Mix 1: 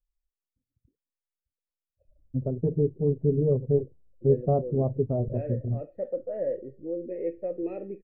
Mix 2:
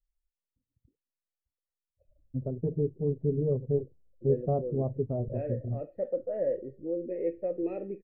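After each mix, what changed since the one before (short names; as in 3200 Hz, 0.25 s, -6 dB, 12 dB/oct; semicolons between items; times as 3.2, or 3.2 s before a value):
first voice -4.5 dB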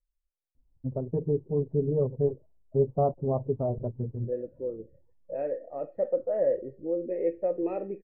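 first voice: entry -1.50 s; master: add bell 1000 Hz +12.5 dB 1.2 oct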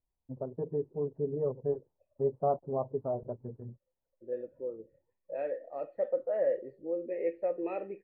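first voice: entry -0.55 s; master: add tilt +4 dB/oct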